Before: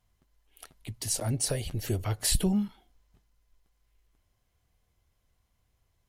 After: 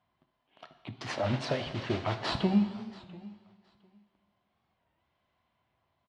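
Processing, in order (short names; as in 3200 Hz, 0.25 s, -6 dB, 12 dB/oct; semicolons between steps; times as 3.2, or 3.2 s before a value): in parallel at -9 dB: decimation with a swept rate 10×, swing 160% 0.52 Hz; 1.08–2.31 on the sum: modulation noise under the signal 10 dB; speaker cabinet 170–3800 Hz, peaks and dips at 460 Hz -7 dB, 660 Hz +5 dB, 1000 Hz +5 dB; feedback echo 0.699 s, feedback 16%, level -21 dB; plate-style reverb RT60 1.6 s, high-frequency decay 0.95×, pre-delay 0 ms, DRR 8.5 dB; record warp 33 1/3 rpm, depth 160 cents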